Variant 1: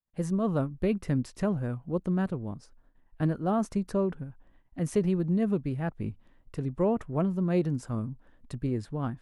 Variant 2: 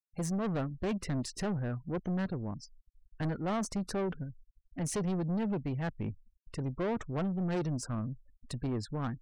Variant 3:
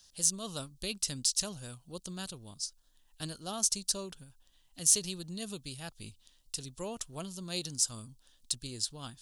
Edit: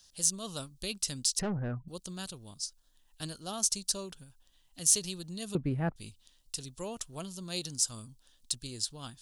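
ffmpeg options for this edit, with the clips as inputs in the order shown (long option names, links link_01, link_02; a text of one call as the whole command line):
ffmpeg -i take0.wav -i take1.wav -i take2.wav -filter_complex "[2:a]asplit=3[link_01][link_02][link_03];[link_01]atrim=end=1.392[link_04];[1:a]atrim=start=1.388:end=1.882[link_05];[link_02]atrim=start=1.878:end=5.552[link_06];[0:a]atrim=start=5.548:end=5.962[link_07];[link_03]atrim=start=5.958[link_08];[link_04][link_05]acrossfade=duration=0.004:curve1=hsin:curve2=hsin[link_09];[link_09][link_06]acrossfade=duration=0.004:curve1=hsin:curve2=hsin[link_10];[link_10][link_07]acrossfade=duration=0.004:curve1=hsin:curve2=hsin[link_11];[link_11][link_08]acrossfade=duration=0.004:curve1=hsin:curve2=hsin" out.wav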